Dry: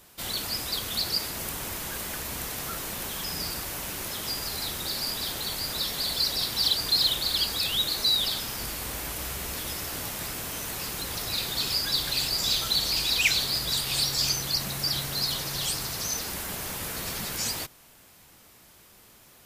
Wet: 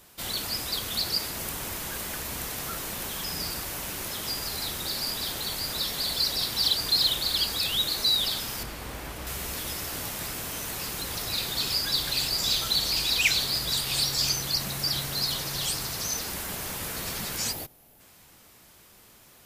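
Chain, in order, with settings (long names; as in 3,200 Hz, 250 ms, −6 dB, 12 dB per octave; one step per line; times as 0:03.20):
0:08.63–0:09.27: high-shelf EQ 3,900 Hz −11 dB
0:17.52–0:18.00: gain on a spectral selection 900–10,000 Hz −8 dB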